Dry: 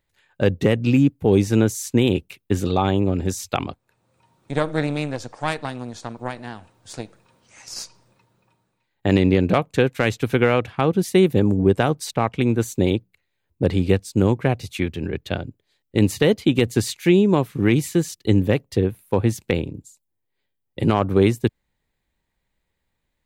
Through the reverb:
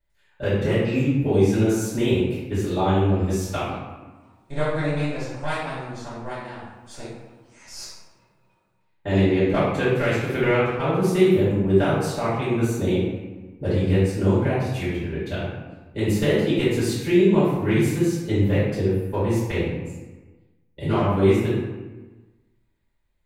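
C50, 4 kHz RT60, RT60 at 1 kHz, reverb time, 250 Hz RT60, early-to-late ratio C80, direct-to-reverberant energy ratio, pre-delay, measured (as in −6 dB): −1.0 dB, 0.75 s, 1.3 s, 1.3 s, 1.5 s, 2.5 dB, −12.5 dB, 4 ms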